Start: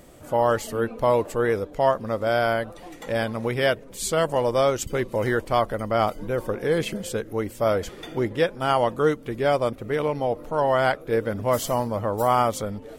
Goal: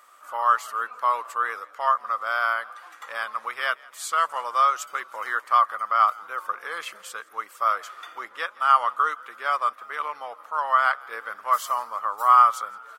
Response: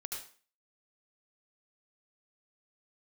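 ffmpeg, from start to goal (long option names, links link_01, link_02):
-filter_complex "[0:a]highpass=frequency=1200:width_type=q:width=8.1,asplit=5[link_01][link_02][link_03][link_04][link_05];[link_02]adelay=166,afreqshift=49,volume=-24dB[link_06];[link_03]adelay=332,afreqshift=98,volume=-28.4dB[link_07];[link_04]adelay=498,afreqshift=147,volume=-32.9dB[link_08];[link_05]adelay=664,afreqshift=196,volume=-37.3dB[link_09];[link_01][link_06][link_07][link_08][link_09]amix=inputs=5:normalize=0,volume=-5dB"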